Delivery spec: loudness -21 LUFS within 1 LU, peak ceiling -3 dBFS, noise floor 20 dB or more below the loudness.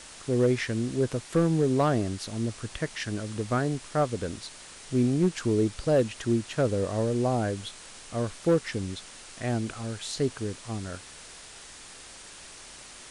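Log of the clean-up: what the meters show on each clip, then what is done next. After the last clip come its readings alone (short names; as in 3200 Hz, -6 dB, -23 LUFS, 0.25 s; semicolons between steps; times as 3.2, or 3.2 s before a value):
clipped 0.3%; flat tops at -16.0 dBFS; noise floor -47 dBFS; noise floor target -49 dBFS; loudness -28.5 LUFS; peak -16.0 dBFS; loudness target -21.0 LUFS
-> clip repair -16 dBFS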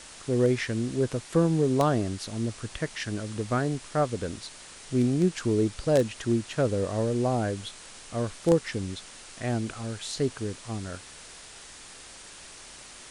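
clipped 0.0%; noise floor -47 dBFS; noise floor target -48 dBFS
-> denoiser 6 dB, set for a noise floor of -47 dBFS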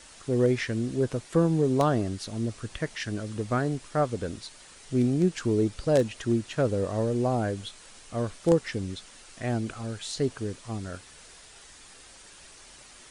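noise floor -51 dBFS; loudness -28.0 LUFS; peak -8.0 dBFS; loudness target -21.0 LUFS
-> gain +7 dB; limiter -3 dBFS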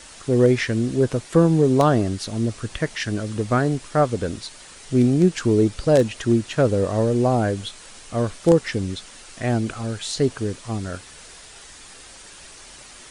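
loudness -21.0 LUFS; peak -3.0 dBFS; noise floor -44 dBFS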